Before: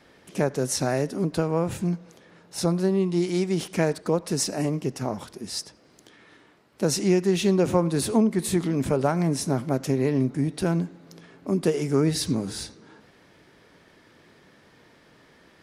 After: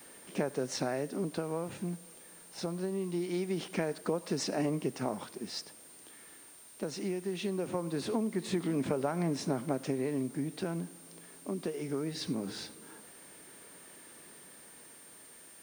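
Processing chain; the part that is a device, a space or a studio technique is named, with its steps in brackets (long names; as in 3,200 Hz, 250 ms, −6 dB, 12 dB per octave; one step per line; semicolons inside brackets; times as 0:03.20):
medium wave at night (band-pass filter 180–4,400 Hz; downward compressor, threshold −26 dBFS, peak gain reduction 10 dB; amplitude tremolo 0.22 Hz, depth 43%; steady tone 9,000 Hz −52 dBFS; white noise bed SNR 23 dB)
level −1.5 dB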